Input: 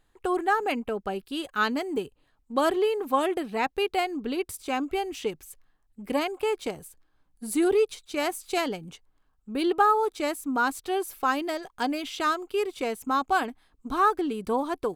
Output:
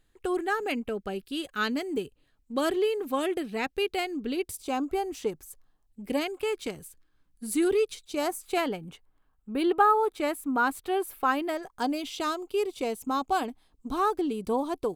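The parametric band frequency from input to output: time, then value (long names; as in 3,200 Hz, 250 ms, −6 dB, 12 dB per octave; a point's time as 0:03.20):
parametric band −8.5 dB 1.1 octaves
0:04.30 920 Hz
0:04.95 2,800 Hz
0:05.45 2,800 Hz
0:06.44 760 Hz
0:07.91 760 Hz
0:08.52 5,800 Hz
0:11.47 5,800 Hz
0:11.96 1,600 Hz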